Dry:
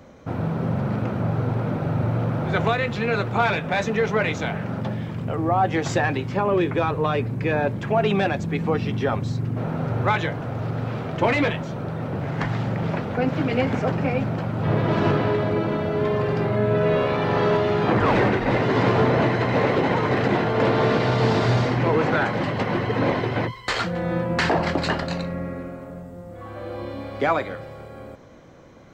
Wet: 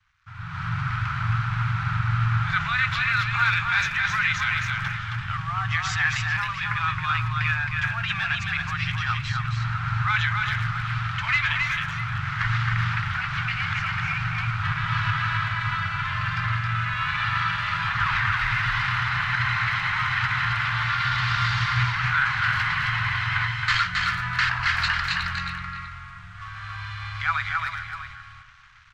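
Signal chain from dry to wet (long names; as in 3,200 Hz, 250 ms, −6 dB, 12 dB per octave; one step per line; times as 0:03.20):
parametric band 92 Hz −9 dB 1.4 octaves
brickwall limiter −18.5 dBFS, peak gain reduction 9.5 dB
dead-zone distortion −49 dBFS
elliptic band-stop filter 110–1,300 Hz, stop band 60 dB
high-frequency loss of the air 120 metres
single-tap delay 269 ms −3.5 dB
automatic gain control gain up to 15 dB
far-end echo of a speakerphone 380 ms, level −9 dB
level −4.5 dB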